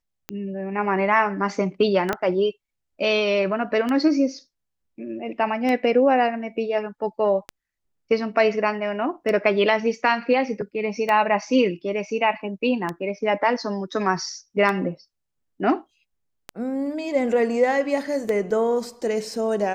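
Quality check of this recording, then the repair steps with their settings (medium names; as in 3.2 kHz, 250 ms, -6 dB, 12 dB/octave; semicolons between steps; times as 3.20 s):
tick 33 1/3 rpm -13 dBFS
2.13 s: pop -9 dBFS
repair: de-click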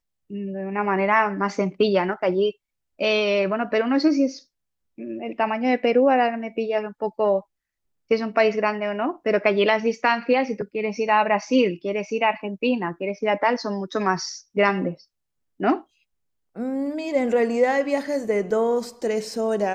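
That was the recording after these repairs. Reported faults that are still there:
2.13 s: pop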